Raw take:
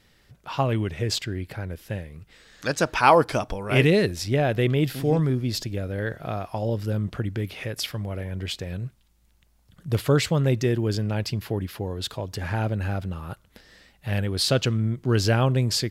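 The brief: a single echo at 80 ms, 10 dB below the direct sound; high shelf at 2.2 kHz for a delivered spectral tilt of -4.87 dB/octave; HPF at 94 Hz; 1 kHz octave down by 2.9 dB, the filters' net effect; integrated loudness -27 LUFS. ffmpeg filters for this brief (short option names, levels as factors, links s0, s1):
-af "highpass=94,equalizer=f=1000:t=o:g=-4.5,highshelf=f=2200:g=3.5,aecho=1:1:80:0.316,volume=0.794"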